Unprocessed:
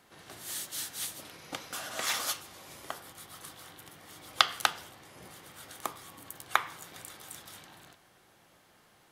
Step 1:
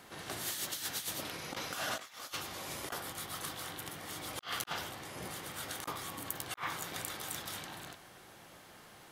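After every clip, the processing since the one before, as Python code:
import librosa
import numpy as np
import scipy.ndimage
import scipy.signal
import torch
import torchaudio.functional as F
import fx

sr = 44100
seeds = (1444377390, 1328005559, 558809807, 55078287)

y = fx.dynamic_eq(x, sr, hz=9100.0, q=1.2, threshold_db=-52.0, ratio=4.0, max_db=-5)
y = fx.over_compress(y, sr, threshold_db=-42.0, ratio=-0.5)
y = F.gain(torch.from_numpy(y), 2.0).numpy()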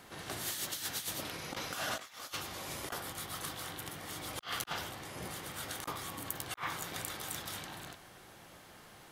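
y = fx.low_shelf(x, sr, hz=90.0, db=5.5)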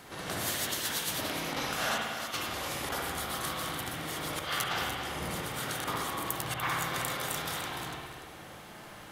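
y = x + 10.0 ** (-9.5 / 20.0) * np.pad(x, (int(294 * sr / 1000.0), 0))[:len(x)]
y = fx.rev_spring(y, sr, rt60_s=1.3, pass_ms=(56,), chirp_ms=55, drr_db=-1.0)
y = F.gain(torch.from_numpy(y), 4.0).numpy()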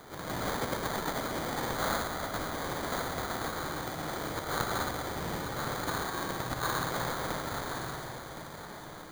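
y = fx.sample_hold(x, sr, seeds[0], rate_hz=2700.0, jitter_pct=0)
y = y + 10.0 ** (-10.0 / 20.0) * np.pad(y, (int(1066 * sr / 1000.0), 0))[:len(y)]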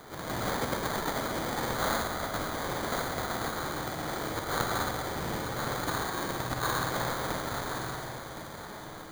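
y = fx.doubler(x, sr, ms=47.0, db=-11.5)
y = F.gain(torch.from_numpy(y), 1.5).numpy()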